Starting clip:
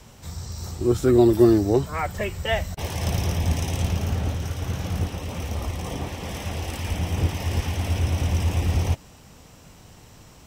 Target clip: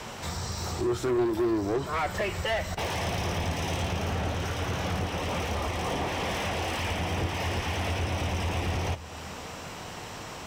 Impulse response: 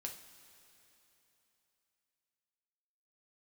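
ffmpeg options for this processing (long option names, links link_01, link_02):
-filter_complex "[0:a]acompressor=threshold=-33dB:ratio=2.5,asplit=2[link_01][link_02];[link_02]highpass=frequency=720:poles=1,volume=23dB,asoftclip=type=tanh:threshold=-20dB[link_03];[link_01][link_03]amix=inputs=2:normalize=0,lowpass=frequency=2300:poles=1,volume=-6dB,asplit=2[link_04][link_05];[1:a]atrim=start_sample=2205,asetrate=33516,aresample=44100,lowshelf=frequency=130:gain=11[link_06];[link_05][link_06]afir=irnorm=-1:irlink=0,volume=-10dB[link_07];[link_04][link_07]amix=inputs=2:normalize=0,volume=-2dB"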